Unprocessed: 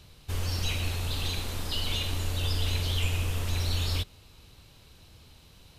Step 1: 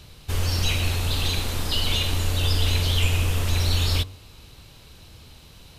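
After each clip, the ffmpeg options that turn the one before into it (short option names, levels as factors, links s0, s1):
-af "bandreject=f=94.57:t=h:w=4,bandreject=f=189.14:t=h:w=4,bandreject=f=283.71:t=h:w=4,bandreject=f=378.28:t=h:w=4,bandreject=f=472.85:t=h:w=4,bandreject=f=567.42:t=h:w=4,bandreject=f=661.99:t=h:w=4,bandreject=f=756.56:t=h:w=4,bandreject=f=851.13:t=h:w=4,bandreject=f=945.7:t=h:w=4,bandreject=f=1040.27:t=h:w=4,bandreject=f=1134.84:t=h:w=4,volume=2.24"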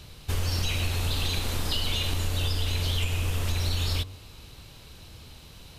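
-af "acompressor=threshold=0.0708:ratio=6"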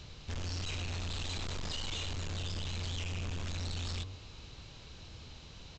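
-af "alimiter=limit=0.0944:level=0:latency=1:release=22,aresample=16000,asoftclip=type=hard:threshold=0.0237,aresample=44100,volume=0.708"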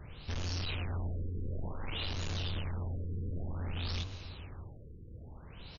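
-af "aecho=1:1:655:0.2,afftfilt=real='re*lt(b*sr/1024,500*pow(7100/500,0.5+0.5*sin(2*PI*0.55*pts/sr)))':imag='im*lt(b*sr/1024,500*pow(7100/500,0.5+0.5*sin(2*PI*0.55*pts/sr)))':win_size=1024:overlap=0.75,volume=1.26"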